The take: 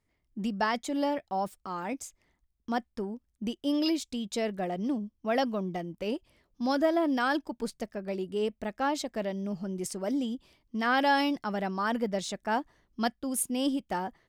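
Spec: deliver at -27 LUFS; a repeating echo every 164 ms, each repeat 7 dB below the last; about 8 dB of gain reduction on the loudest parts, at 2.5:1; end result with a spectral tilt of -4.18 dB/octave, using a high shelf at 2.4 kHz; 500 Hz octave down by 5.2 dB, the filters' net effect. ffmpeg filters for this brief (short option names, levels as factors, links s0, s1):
-af "equalizer=f=500:t=o:g=-7.5,highshelf=f=2400:g=7.5,acompressor=threshold=0.0282:ratio=2.5,aecho=1:1:164|328|492|656|820:0.447|0.201|0.0905|0.0407|0.0183,volume=2.24"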